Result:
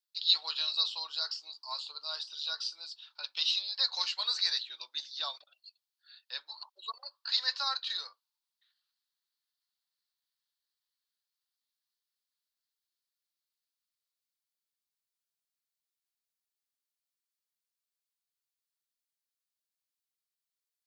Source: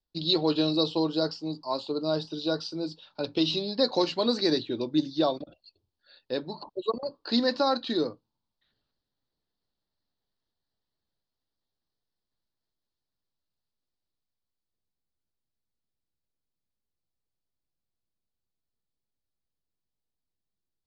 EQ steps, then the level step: high-pass 1.1 kHz 24 dB/octave; treble shelf 3 kHz +9 dB; -4.5 dB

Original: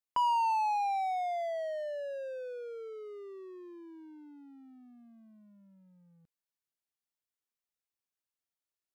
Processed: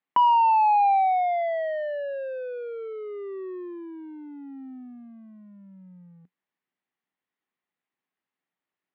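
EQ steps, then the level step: cabinet simulation 120–3300 Hz, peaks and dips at 180 Hz +8 dB, 260 Hz +7 dB, 370 Hz +5 dB, 790 Hz +5 dB, 1.1 kHz +4 dB, 1.9 kHz +7 dB; +6.0 dB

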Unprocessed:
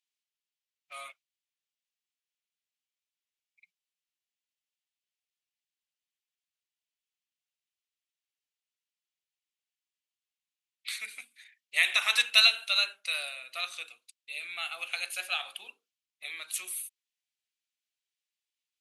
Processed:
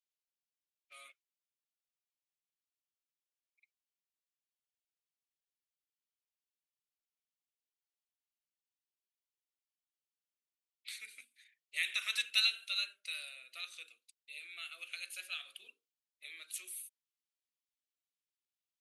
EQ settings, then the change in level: static phaser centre 350 Hz, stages 4; dynamic bell 470 Hz, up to -6 dB, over -51 dBFS, Q 0.9; -8.5 dB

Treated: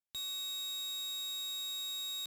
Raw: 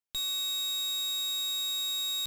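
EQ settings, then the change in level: high-pass 52 Hz; -7.5 dB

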